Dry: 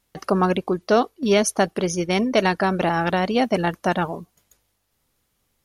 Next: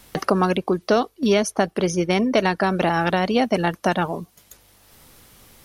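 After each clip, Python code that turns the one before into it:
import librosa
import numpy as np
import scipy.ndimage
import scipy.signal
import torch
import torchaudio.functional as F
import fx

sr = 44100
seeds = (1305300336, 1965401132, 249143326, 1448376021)

y = fx.notch(x, sr, hz=6800.0, q=22.0)
y = fx.band_squash(y, sr, depth_pct=70)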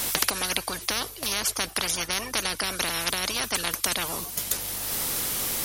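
y = fx.high_shelf(x, sr, hz=4600.0, db=9.0)
y = fx.spectral_comp(y, sr, ratio=10.0)
y = F.gain(torch.from_numpy(y), 2.0).numpy()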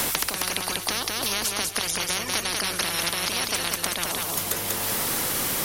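y = fx.echo_feedback(x, sr, ms=191, feedback_pct=29, wet_db=-3.5)
y = fx.band_squash(y, sr, depth_pct=100)
y = F.gain(torch.from_numpy(y), -1.0).numpy()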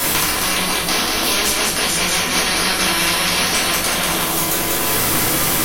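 y = fx.room_shoebox(x, sr, seeds[0], volume_m3=190.0, walls='mixed', distance_m=3.0)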